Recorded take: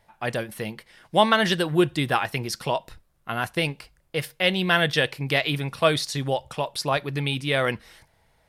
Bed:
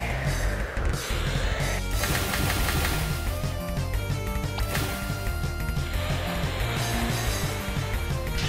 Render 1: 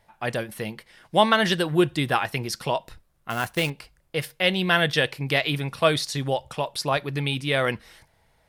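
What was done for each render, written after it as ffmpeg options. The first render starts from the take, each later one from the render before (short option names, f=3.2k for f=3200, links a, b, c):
-filter_complex "[0:a]asettb=1/sr,asplit=3[a][b][c];[a]atrim=end=3.304[d];[b]atrim=start=3.3:end=3.7,asetpts=PTS-STARTPTS,afade=t=in:d=0.004:c=qsin,afade=t=out:st=0.396:d=0.004:c=qsin,acrusher=bits=3:mode=log:mix=0:aa=0.000001[e];[c]atrim=start=3.696[f];[d][e]acrossfade=d=0.004:c1=hsin:c2=qsin[g];[g][f]acrossfade=d=0.004:c1=qsin:c2=hsin"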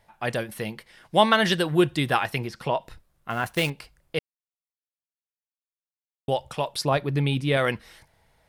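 -filter_complex "[0:a]asettb=1/sr,asplit=3[a][b][c];[a]atrim=end=2.384[d];[b]atrim=start=2.38:end=3.46,asetpts=PTS-STARTPTS,afade=t=in:d=0.004:c=qsin,afade=t=out:st=1.076:d=0.004:c=qsin,acrossover=split=2900[e][f];[f]acompressor=threshold=-48dB:ratio=4:attack=1:release=60[g];[e][g]amix=inputs=2:normalize=0[h];[c]atrim=start=3.456[i];[d][h]acrossfade=d=0.004:c1=hsin:c2=qsin[j];[j][i]acrossfade=d=0.004:c1=qsin:c2=hsin,asettb=1/sr,asplit=3[k][l][m];[k]atrim=end=6.854[n];[l]atrim=start=6.85:end=7.57,asetpts=PTS-STARTPTS,afade=t=in:d=0.004:c=qsin,afade=t=out:st=0.716:d=0.004:c=qsin,tiltshelf=f=890:g=4.5[o];[m]atrim=start=7.566[p];[n][o]acrossfade=d=0.004:c1=hsin:c2=qsin[q];[q][p]acrossfade=d=0.004:c1=qsin:c2=hsin,asplit=3[r][s][t];[r]atrim=end=4.19,asetpts=PTS-STARTPTS,afade=t=out:st=4.186:d=0.004:c=hsin[u];[s]atrim=start=4.19:end=6.28,asetpts=PTS-STARTPTS,volume=0[v];[t]atrim=start=6.28,asetpts=PTS-STARTPTS,afade=t=in:d=0.004:c=hsin[w];[u][v][w]concat=n=3:v=0:a=1"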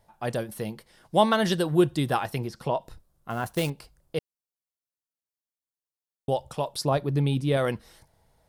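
-af "equalizer=f=2.2k:t=o:w=1.5:g=-10"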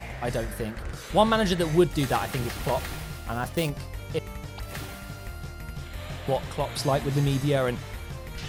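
-filter_complex "[1:a]volume=-9dB[a];[0:a][a]amix=inputs=2:normalize=0"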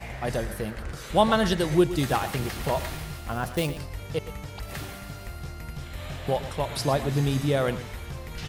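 -af "aecho=1:1:117:0.211"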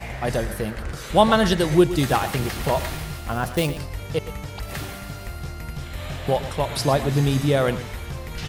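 -af "volume=4.5dB"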